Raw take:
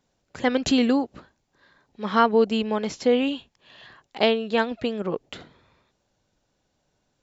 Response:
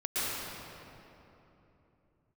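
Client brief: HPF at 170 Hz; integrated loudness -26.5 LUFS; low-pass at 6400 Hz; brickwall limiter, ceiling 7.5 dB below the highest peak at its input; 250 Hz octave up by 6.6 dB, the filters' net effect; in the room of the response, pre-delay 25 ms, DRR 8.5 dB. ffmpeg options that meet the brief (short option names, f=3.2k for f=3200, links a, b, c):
-filter_complex "[0:a]highpass=170,lowpass=6.4k,equalizer=f=250:t=o:g=8,alimiter=limit=-11dB:level=0:latency=1,asplit=2[a][b];[1:a]atrim=start_sample=2205,adelay=25[c];[b][c]afir=irnorm=-1:irlink=0,volume=-17.5dB[d];[a][d]amix=inputs=2:normalize=0,volume=-4dB"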